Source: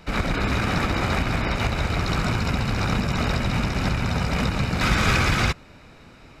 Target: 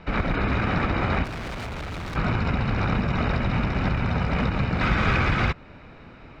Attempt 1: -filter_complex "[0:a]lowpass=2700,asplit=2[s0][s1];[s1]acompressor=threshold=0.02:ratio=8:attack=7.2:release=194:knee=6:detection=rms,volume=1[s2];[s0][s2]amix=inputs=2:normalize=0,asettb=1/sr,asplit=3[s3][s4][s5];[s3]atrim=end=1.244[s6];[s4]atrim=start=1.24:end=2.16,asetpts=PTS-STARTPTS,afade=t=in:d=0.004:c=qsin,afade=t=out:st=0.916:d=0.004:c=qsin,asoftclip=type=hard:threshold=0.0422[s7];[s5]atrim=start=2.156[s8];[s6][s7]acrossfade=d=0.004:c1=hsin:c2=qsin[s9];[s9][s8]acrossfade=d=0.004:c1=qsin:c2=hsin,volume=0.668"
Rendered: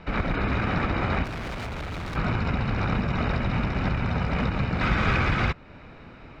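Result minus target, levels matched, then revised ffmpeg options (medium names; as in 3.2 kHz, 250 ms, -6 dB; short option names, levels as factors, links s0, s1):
compression: peak gain reduction +7.5 dB
-filter_complex "[0:a]lowpass=2700,asplit=2[s0][s1];[s1]acompressor=threshold=0.0531:ratio=8:attack=7.2:release=194:knee=6:detection=rms,volume=1[s2];[s0][s2]amix=inputs=2:normalize=0,asettb=1/sr,asplit=3[s3][s4][s5];[s3]atrim=end=1.244[s6];[s4]atrim=start=1.24:end=2.16,asetpts=PTS-STARTPTS,afade=t=in:d=0.004:c=qsin,afade=t=out:st=0.916:d=0.004:c=qsin,asoftclip=type=hard:threshold=0.0422[s7];[s5]atrim=start=2.156[s8];[s6][s7]acrossfade=d=0.004:c1=hsin:c2=qsin[s9];[s9][s8]acrossfade=d=0.004:c1=qsin:c2=hsin,volume=0.668"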